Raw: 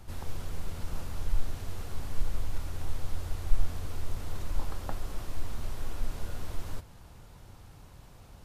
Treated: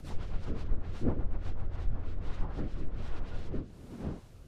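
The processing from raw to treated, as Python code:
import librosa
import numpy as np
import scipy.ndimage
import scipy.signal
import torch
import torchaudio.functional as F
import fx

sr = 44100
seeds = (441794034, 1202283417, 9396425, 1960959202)

y = fx.dmg_wind(x, sr, seeds[0], corner_hz=260.0, level_db=-41.0)
y = fx.env_lowpass_down(y, sr, base_hz=1300.0, full_db=-21.0)
y = 10.0 ** (-18.0 / 20.0) * (np.abs((y / 10.0 ** (-18.0 / 20.0) + 3.0) % 4.0 - 2.0) - 1.0)
y = fx.stretch_vocoder_free(y, sr, factor=0.53)
y = fx.rotary_switch(y, sr, hz=8.0, then_hz=1.2, switch_at_s=1.4)
y = y * 10.0 ** (3.5 / 20.0)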